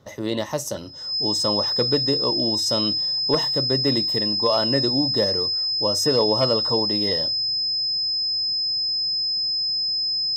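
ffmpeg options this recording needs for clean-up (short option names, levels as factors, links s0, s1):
-af "bandreject=f=5100:w=30"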